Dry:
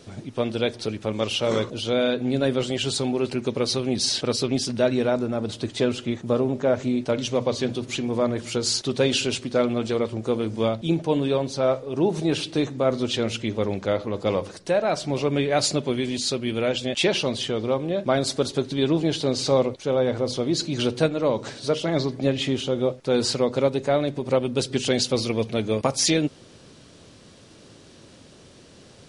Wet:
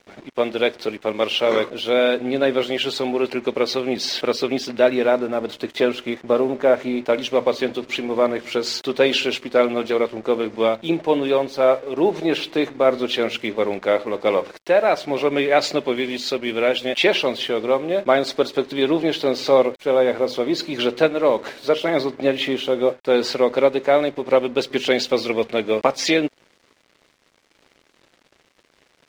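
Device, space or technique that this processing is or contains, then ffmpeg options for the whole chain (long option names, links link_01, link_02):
pocket radio on a weak battery: -af "highpass=340,lowpass=3400,aeval=exprs='sgn(val(0))*max(abs(val(0))-0.00316,0)':channel_layout=same,equalizer=frequency=2100:width_type=o:width=0.4:gain=4,volume=6.5dB"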